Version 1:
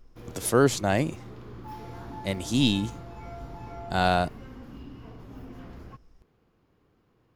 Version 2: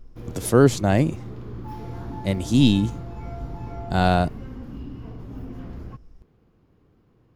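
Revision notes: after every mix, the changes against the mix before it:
master: add bass shelf 430 Hz +9 dB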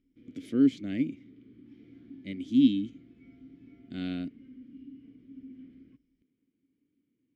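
background -4.5 dB; master: add vowel filter i

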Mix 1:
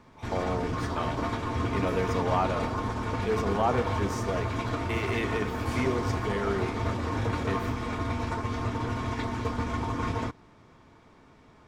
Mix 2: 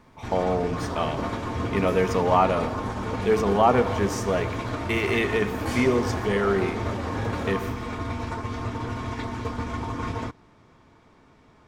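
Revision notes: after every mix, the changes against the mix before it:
speech +7.5 dB; second sound +7.0 dB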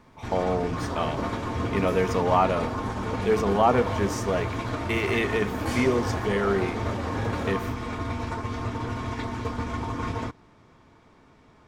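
speech: send -6.5 dB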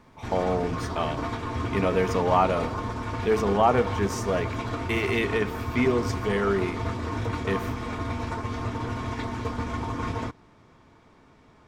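second sound: muted

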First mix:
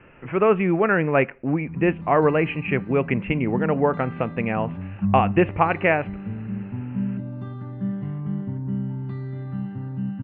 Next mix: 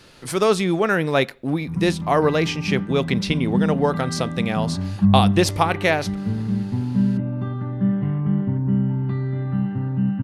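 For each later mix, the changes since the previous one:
speech: remove steep low-pass 2.8 kHz 96 dB/octave; background +7.0 dB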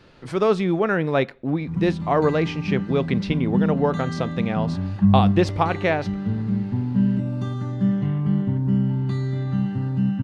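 background: remove Bessel low-pass 1.6 kHz, order 4; master: add tape spacing loss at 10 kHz 22 dB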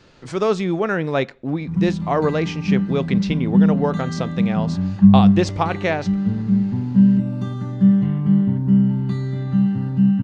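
speech: add resonant low-pass 7.1 kHz, resonance Q 2.6; background: add peaking EQ 190 Hz +8.5 dB 0.26 oct

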